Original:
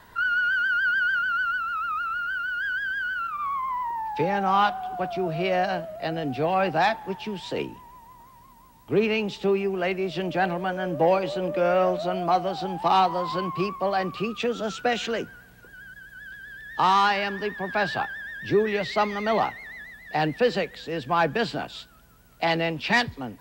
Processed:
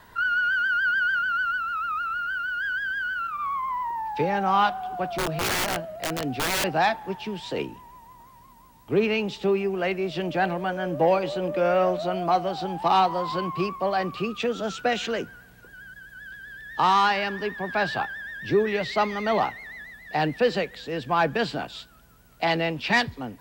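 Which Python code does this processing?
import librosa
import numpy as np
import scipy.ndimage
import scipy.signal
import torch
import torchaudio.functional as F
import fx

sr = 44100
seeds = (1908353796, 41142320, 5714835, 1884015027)

y = fx.overflow_wrap(x, sr, gain_db=20.5, at=(5.18, 6.64))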